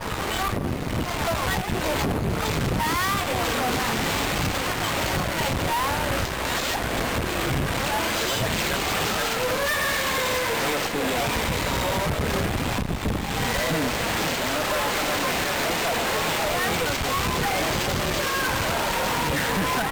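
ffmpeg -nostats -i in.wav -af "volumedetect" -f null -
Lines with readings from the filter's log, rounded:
mean_volume: -24.7 dB
max_volume: -17.0 dB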